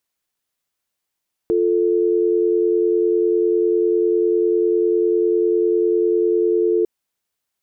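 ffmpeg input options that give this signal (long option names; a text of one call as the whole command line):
ffmpeg -f lavfi -i "aevalsrc='0.141*(sin(2*PI*350*t)+sin(2*PI*440*t))':duration=5.35:sample_rate=44100" out.wav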